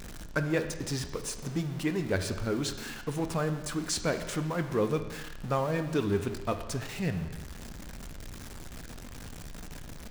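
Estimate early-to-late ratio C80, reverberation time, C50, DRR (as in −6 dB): 11.0 dB, non-exponential decay, 10.0 dB, 7.5 dB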